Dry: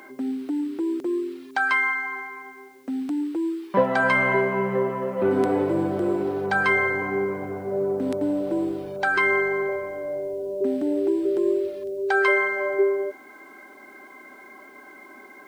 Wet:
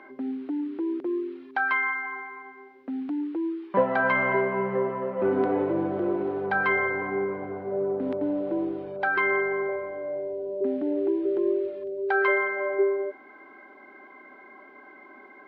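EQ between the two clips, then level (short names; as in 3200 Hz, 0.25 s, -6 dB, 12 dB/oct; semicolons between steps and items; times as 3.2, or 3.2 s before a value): air absorption 390 m; low shelf 200 Hz -8 dB; 0.0 dB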